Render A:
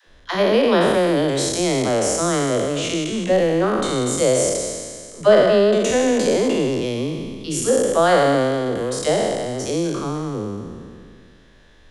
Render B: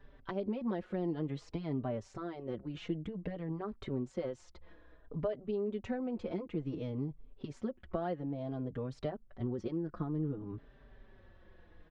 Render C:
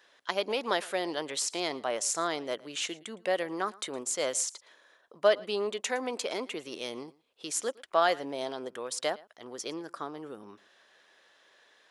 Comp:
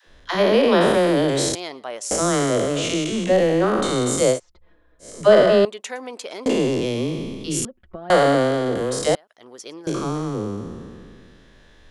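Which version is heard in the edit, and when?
A
1.55–2.11 s: from C
4.35–5.04 s: from B, crossfade 0.10 s
5.65–6.46 s: from C
7.65–8.10 s: from B
9.15–9.87 s: from C

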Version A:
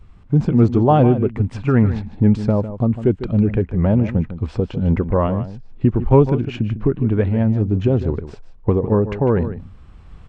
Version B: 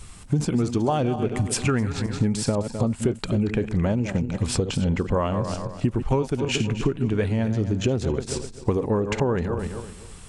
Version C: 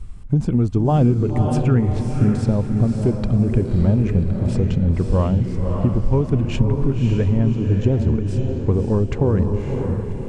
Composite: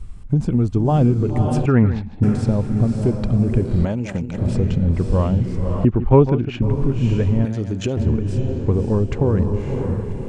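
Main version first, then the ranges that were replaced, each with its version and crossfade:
C
1.66–2.23 s: from A
3.85–4.38 s: from B
5.85–6.62 s: from A
7.45–7.97 s: from B

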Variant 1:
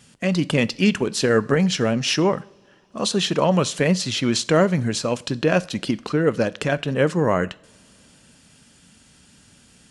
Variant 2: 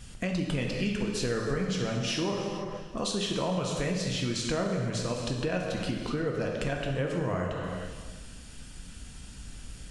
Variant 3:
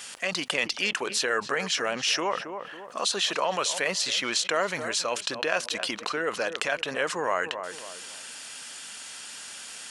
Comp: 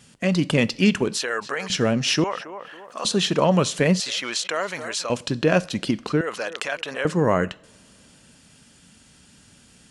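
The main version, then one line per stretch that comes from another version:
1
1.17–1.70 s: from 3
2.24–3.05 s: from 3
4.00–5.10 s: from 3
6.21–7.05 s: from 3
not used: 2

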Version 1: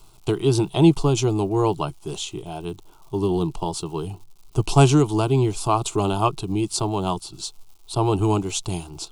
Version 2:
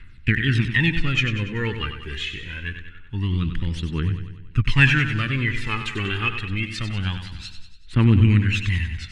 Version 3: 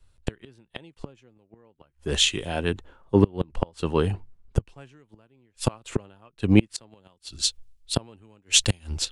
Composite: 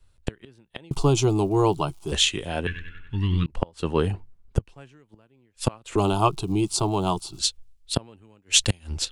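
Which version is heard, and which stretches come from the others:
3
0.91–2.12 s: from 1
2.67–3.46 s: from 2
5.96–7.39 s: from 1

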